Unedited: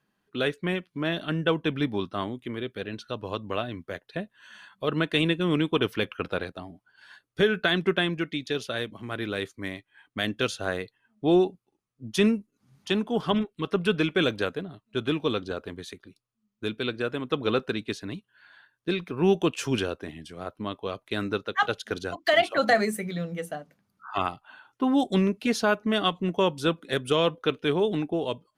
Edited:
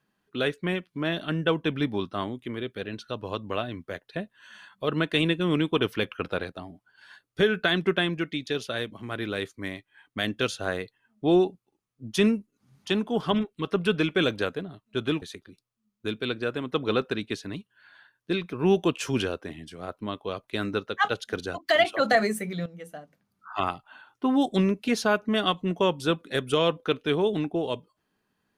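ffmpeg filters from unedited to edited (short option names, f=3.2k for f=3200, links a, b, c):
-filter_complex "[0:a]asplit=3[a][b][c];[a]atrim=end=15.222[d];[b]atrim=start=15.798:end=23.24,asetpts=PTS-STARTPTS,afade=t=out:st=7.438:d=0.004:c=hsin:silence=0.237137[e];[c]atrim=start=23.24,asetpts=PTS-STARTPTS,afade=t=in:d=0.93:silence=0.237137[f];[e][f]concat=n=2:v=0:a=1[g];[d][g]acrossfade=d=0.004:c1=hsin:c2=hsin"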